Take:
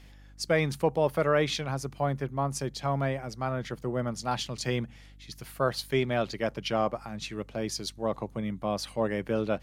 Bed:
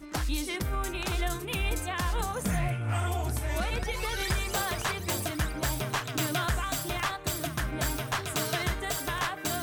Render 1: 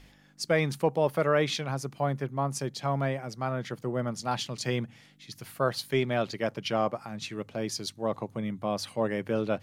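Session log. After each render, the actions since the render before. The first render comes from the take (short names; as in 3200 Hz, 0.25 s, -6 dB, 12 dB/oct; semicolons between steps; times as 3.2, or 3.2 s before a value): de-hum 50 Hz, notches 2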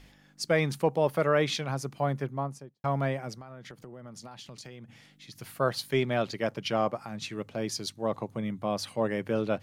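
2.2–2.84 studio fade out; 3.34–5.38 compressor 16:1, threshold -41 dBFS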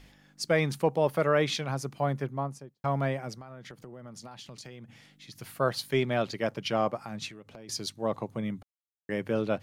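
7.28–7.69 compressor, threshold -44 dBFS; 8.63–9.09 mute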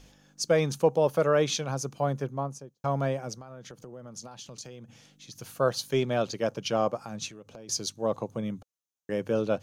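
thirty-one-band EQ 500 Hz +5 dB, 2000 Hz -9 dB, 6300 Hz +10 dB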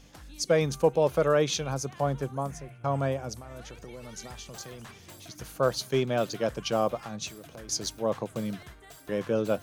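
add bed -18 dB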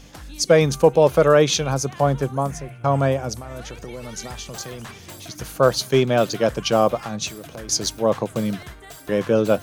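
gain +9 dB; limiter -3 dBFS, peak gain reduction 1 dB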